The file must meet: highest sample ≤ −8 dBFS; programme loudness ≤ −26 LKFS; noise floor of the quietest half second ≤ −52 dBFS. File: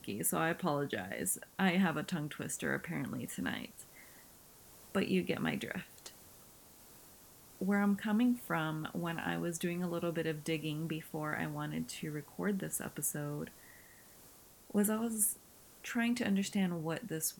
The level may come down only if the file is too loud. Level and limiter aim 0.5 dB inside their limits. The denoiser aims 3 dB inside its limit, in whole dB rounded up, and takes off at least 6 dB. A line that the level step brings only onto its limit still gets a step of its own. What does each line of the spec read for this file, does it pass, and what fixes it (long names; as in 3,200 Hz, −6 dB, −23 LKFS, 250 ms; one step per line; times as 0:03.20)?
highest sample −17.5 dBFS: in spec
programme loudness −36.0 LKFS: in spec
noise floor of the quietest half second −59 dBFS: in spec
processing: no processing needed